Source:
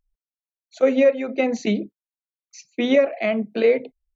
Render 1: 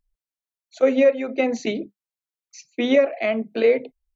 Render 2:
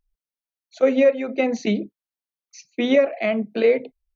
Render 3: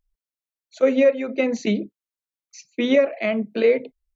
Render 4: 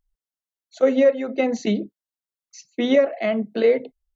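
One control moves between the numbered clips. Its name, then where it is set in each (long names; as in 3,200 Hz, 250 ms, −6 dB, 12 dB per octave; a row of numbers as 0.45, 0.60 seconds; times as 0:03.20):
notch filter, centre frequency: 200, 7,300, 740, 2,400 Hertz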